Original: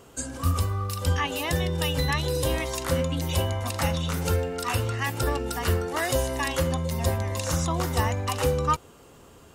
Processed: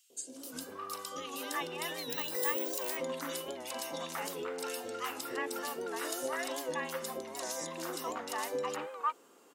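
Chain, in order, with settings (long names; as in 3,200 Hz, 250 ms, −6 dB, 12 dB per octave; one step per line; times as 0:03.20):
high-pass filter 270 Hz 24 dB per octave
three-band delay without the direct sound highs, lows, mids 100/360 ms, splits 620/2,900 Hz
0:02.10–0:02.97: bad sample-rate conversion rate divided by 2×, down none, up zero stuff
wow of a warped record 78 rpm, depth 100 cents
level −7 dB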